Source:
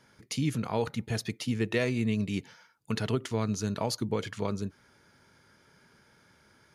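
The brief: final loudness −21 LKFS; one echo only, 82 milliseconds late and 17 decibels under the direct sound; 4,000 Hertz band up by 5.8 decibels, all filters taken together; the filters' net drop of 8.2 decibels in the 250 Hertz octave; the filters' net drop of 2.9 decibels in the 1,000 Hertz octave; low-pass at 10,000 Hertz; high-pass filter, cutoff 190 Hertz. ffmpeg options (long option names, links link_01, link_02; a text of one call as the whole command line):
ffmpeg -i in.wav -af "highpass=190,lowpass=10000,equalizer=frequency=250:width_type=o:gain=-8,equalizer=frequency=1000:width_type=o:gain=-3.5,equalizer=frequency=4000:width_type=o:gain=7.5,aecho=1:1:82:0.141,volume=13dB" out.wav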